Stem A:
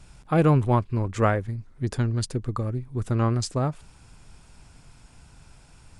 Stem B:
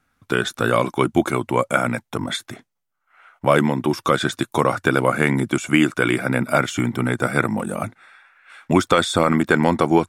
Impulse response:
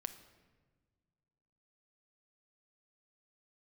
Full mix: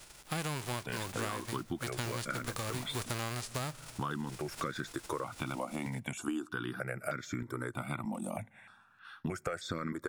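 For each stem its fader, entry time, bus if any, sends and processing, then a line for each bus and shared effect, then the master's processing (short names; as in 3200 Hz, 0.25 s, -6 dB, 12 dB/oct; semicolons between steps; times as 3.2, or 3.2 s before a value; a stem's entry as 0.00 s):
-9.0 dB, 0.00 s, send -9 dB, spectral whitening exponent 0.3; AGC gain up to 9.5 dB
-5.5 dB, 0.55 s, send -21.5 dB, step phaser 3.2 Hz 430–2900 Hz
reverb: on, pre-delay 6 ms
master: compressor 6:1, threshold -34 dBFS, peak gain reduction 16 dB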